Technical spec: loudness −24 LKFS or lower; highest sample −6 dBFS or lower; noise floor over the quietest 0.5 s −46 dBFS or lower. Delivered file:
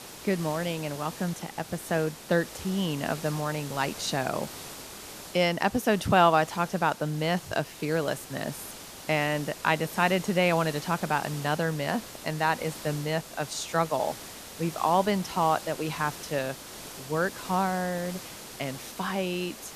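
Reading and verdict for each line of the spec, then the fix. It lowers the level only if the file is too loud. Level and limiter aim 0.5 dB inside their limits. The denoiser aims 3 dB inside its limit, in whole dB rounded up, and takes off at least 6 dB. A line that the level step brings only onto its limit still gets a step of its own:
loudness −28.5 LKFS: in spec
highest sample −7.0 dBFS: in spec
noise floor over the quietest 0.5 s −43 dBFS: out of spec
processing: broadband denoise 6 dB, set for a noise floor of −43 dBFS

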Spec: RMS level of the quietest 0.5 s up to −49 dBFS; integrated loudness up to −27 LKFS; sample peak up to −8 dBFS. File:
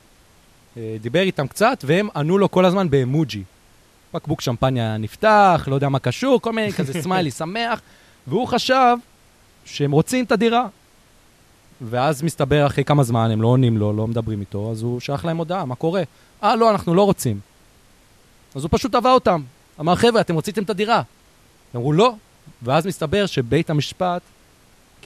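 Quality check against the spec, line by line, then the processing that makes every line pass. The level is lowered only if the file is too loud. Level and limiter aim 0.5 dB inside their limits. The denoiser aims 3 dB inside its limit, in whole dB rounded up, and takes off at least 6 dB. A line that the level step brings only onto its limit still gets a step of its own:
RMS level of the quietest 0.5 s −53 dBFS: in spec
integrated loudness −19.5 LKFS: out of spec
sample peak −3.5 dBFS: out of spec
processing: level −8 dB

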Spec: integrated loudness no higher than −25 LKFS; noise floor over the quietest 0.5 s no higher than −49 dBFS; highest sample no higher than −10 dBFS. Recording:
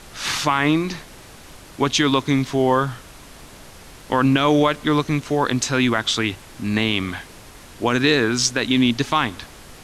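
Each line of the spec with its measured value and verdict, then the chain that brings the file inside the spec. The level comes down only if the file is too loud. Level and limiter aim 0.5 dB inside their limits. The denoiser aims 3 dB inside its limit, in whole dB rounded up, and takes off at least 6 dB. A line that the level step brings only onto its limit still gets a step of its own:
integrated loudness −20.0 LKFS: out of spec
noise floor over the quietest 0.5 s −42 dBFS: out of spec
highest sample −5.5 dBFS: out of spec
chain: broadband denoise 6 dB, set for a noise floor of −42 dBFS
level −5.5 dB

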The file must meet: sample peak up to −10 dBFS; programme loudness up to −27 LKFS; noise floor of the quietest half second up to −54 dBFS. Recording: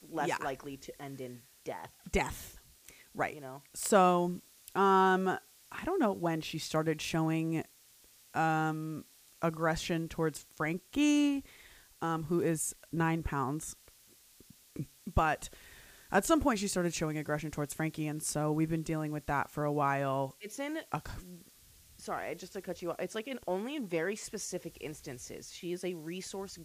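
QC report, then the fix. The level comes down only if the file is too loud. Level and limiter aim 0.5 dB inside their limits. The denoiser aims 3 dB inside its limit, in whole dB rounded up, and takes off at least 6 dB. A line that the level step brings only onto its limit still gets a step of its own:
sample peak −11.5 dBFS: in spec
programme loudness −33.5 LKFS: in spec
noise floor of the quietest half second −62 dBFS: in spec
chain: no processing needed

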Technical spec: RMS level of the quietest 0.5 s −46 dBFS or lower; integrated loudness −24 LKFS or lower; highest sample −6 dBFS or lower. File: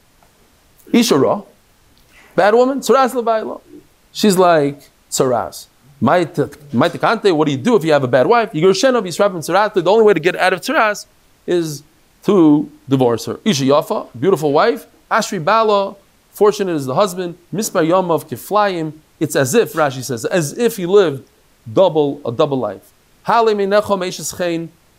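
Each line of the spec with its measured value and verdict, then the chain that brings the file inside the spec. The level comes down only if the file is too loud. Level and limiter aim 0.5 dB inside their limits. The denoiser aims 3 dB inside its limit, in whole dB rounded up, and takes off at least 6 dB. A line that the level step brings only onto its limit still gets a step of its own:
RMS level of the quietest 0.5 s −52 dBFS: in spec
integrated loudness −15.5 LKFS: out of spec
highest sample −1.5 dBFS: out of spec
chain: level −9 dB

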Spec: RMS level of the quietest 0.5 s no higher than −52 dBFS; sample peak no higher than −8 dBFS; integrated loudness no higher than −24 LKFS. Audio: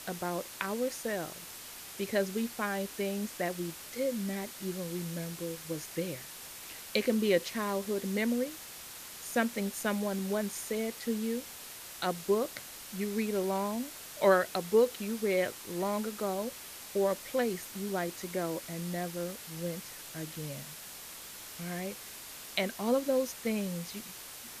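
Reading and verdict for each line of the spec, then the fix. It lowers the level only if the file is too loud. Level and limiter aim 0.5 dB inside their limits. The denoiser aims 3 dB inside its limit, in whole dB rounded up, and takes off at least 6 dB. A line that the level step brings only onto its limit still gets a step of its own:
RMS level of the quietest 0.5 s −46 dBFS: out of spec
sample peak −13.0 dBFS: in spec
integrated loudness −34.0 LKFS: in spec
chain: broadband denoise 9 dB, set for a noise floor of −46 dBFS

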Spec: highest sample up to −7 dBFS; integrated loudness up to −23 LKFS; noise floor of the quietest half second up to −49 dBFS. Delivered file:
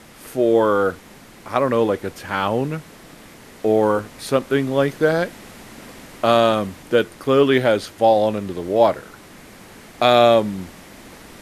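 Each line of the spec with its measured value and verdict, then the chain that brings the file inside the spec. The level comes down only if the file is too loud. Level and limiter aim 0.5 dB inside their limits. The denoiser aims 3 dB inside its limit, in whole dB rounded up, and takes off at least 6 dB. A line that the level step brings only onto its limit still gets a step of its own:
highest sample −1.5 dBFS: out of spec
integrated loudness −19.0 LKFS: out of spec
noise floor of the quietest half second −44 dBFS: out of spec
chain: broadband denoise 6 dB, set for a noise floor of −44 dBFS
level −4.5 dB
brickwall limiter −7.5 dBFS

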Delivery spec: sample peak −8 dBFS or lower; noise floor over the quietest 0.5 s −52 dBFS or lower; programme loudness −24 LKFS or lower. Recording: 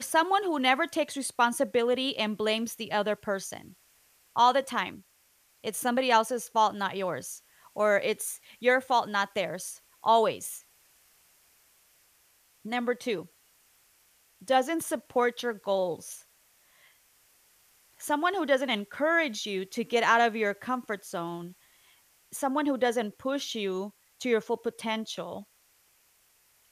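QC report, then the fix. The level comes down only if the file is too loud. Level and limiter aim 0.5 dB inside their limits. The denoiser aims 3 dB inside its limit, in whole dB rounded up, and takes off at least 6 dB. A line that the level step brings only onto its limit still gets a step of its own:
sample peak −9.5 dBFS: in spec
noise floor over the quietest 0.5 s −65 dBFS: in spec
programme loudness −28.5 LKFS: in spec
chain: no processing needed

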